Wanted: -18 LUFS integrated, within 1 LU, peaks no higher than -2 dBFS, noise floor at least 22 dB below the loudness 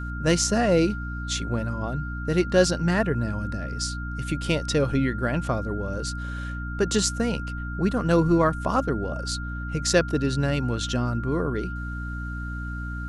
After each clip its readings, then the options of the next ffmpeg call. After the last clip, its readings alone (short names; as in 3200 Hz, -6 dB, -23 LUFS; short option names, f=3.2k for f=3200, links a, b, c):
hum 60 Hz; harmonics up to 300 Hz; hum level -30 dBFS; steady tone 1400 Hz; tone level -36 dBFS; loudness -25.5 LUFS; peak -5.5 dBFS; loudness target -18.0 LUFS
-> -af "bandreject=f=60:t=h:w=6,bandreject=f=120:t=h:w=6,bandreject=f=180:t=h:w=6,bandreject=f=240:t=h:w=6,bandreject=f=300:t=h:w=6"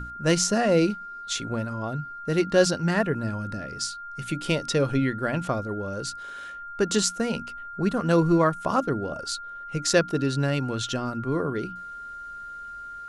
hum none; steady tone 1400 Hz; tone level -36 dBFS
-> -af "bandreject=f=1.4k:w=30"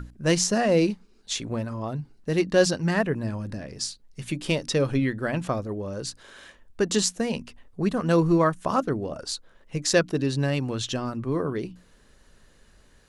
steady tone none; loudness -26.0 LUFS; peak -5.5 dBFS; loudness target -18.0 LUFS
-> -af "volume=8dB,alimiter=limit=-2dB:level=0:latency=1"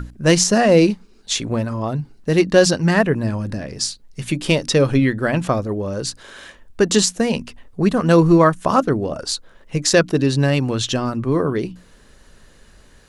loudness -18.0 LUFS; peak -2.0 dBFS; noise floor -49 dBFS